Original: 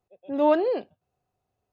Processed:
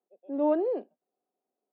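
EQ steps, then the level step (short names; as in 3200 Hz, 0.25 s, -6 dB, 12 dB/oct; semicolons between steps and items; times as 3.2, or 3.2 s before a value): steep high-pass 220 Hz 36 dB/oct; band-pass 310 Hz, Q 0.67; -2.5 dB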